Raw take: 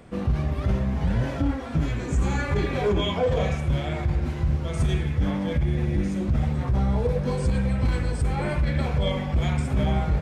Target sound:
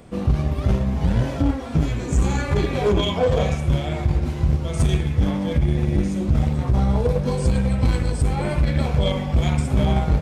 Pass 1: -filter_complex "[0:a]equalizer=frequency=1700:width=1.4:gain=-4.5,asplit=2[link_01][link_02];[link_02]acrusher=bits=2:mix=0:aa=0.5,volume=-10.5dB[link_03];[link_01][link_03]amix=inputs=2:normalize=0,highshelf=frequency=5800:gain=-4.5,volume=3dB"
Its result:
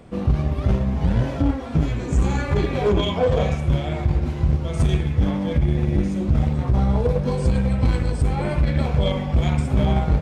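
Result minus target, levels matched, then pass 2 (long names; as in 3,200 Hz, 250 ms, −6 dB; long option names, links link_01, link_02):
8,000 Hz band −5.5 dB
-filter_complex "[0:a]equalizer=frequency=1700:width=1.4:gain=-4.5,asplit=2[link_01][link_02];[link_02]acrusher=bits=2:mix=0:aa=0.5,volume=-10.5dB[link_03];[link_01][link_03]amix=inputs=2:normalize=0,highshelf=frequency=5800:gain=4,volume=3dB"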